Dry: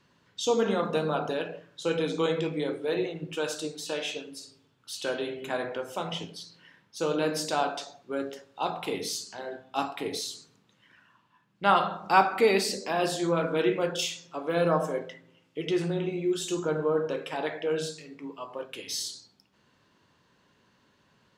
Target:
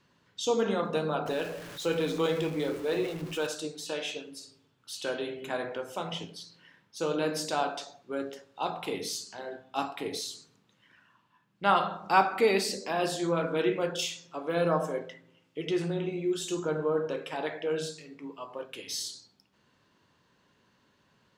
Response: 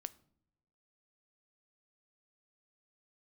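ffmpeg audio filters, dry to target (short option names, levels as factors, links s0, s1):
-filter_complex "[0:a]asettb=1/sr,asplit=3[s0][s1][s2];[s0]atrim=end=1.264[s3];[s1]atrim=start=1.26:end=3.47,asetpts=PTS-STARTPTS,afade=t=in:d=0.004:c=qsin,afade=t=out:st=2.206:d=0.004:c=qsin,aeval=exprs='val(0)+0.5*0.0141*sgn(val(0))':c=same[s4];[s2]atrim=start=3.466[s5];[s3][s4]acrossfade=d=0.004:c1=hsin:c2=qsin[s6];[s6][s5]acrossfade=d=0.004:c1=qsin:c2=hsin,volume=0.794"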